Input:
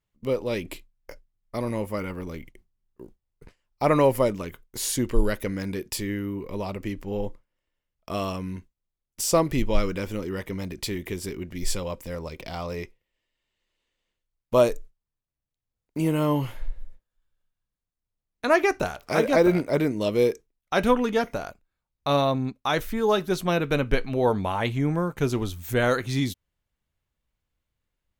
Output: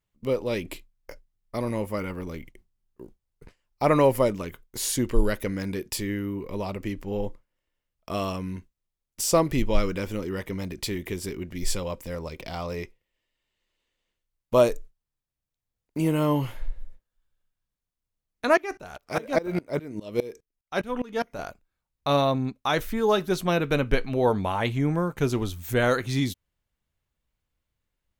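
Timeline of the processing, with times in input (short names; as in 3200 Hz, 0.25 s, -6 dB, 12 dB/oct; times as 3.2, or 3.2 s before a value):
18.57–21.39 dB-ramp tremolo swelling 4.9 Hz, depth 23 dB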